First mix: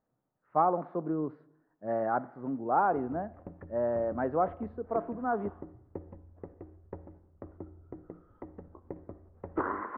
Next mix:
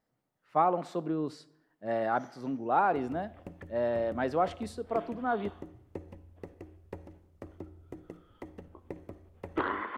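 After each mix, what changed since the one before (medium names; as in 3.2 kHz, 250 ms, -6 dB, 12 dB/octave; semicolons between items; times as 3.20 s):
master: remove low-pass 1.5 kHz 24 dB/octave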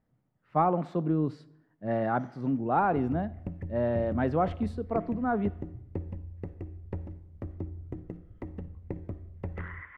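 second sound: add band-pass filter 2 kHz, Q 5.5; master: add tone controls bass +13 dB, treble -13 dB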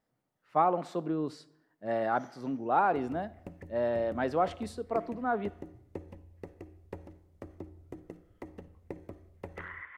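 master: add tone controls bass -13 dB, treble +13 dB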